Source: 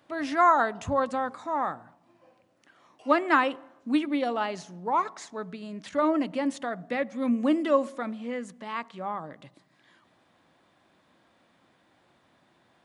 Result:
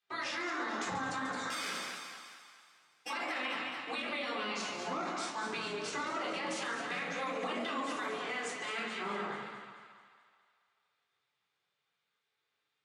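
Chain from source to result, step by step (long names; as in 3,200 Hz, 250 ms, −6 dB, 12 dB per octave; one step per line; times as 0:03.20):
0:01.50–0:03.10: samples sorted by size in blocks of 16 samples
gate on every frequency bin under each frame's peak −10 dB weak
noise gate −53 dBFS, range −24 dB
high-shelf EQ 3,700 Hz +8.5 dB
downward compressor 2 to 1, threshold −41 dBFS, peak gain reduction 10 dB
band-pass filter 160–6,200 Hz
echo with a time of its own for lows and highs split 720 Hz, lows 122 ms, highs 217 ms, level −9 dB
rectangular room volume 460 cubic metres, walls furnished, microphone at 3.8 metres
brickwall limiter −31 dBFS, peak gain reduction 11 dB
feedback echo with a swinging delay time 142 ms, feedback 48%, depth 174 cents, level −11 dB
level +2.5 dB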